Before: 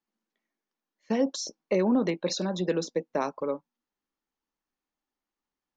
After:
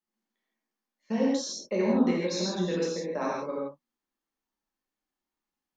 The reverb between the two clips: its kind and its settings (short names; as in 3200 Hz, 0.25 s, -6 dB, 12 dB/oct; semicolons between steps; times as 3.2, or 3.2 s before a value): non-linear reverb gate 0.19 s flat, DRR -6 dB; gain -7 dB